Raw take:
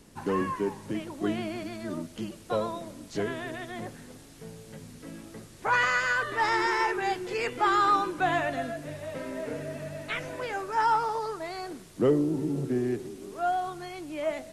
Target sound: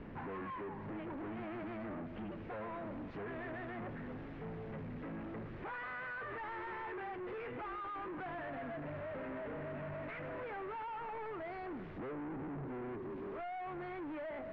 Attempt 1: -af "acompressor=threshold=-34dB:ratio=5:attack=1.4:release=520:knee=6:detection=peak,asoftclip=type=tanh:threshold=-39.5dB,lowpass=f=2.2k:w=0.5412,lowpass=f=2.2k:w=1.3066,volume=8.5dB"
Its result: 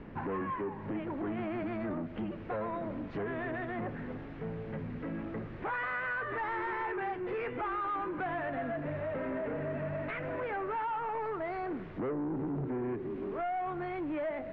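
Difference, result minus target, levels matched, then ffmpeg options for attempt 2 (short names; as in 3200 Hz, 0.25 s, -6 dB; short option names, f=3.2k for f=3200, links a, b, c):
soft clip: distortion -6 dB
-af "acompressor=threshold=-34dB:ratio=5:attack=1.4:release=520:knee=6:detection=peak,asoftclip=type=tanh:threshold=-50dB,lowpass=f=2.2k:w=0.5412,lowpass=f=2.2k:w=1.3066,volume=8.5dB"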